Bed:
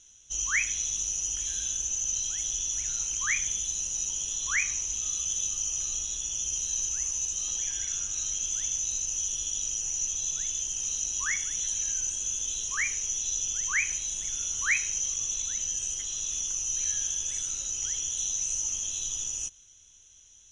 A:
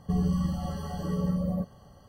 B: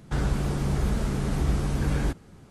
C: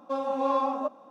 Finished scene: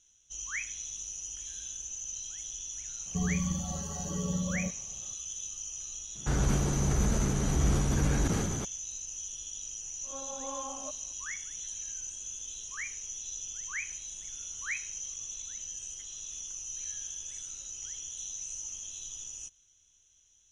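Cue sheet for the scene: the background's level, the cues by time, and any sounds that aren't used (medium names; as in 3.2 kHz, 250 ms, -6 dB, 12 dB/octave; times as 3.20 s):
bed -9.5 dB
3.06 s: add A -4.5 dB
6.15 s: add B -3 dB + decay stretcher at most 25 dB/s
10.03 s: add C -15 dB + reverse spectral sustain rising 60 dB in 0.31 s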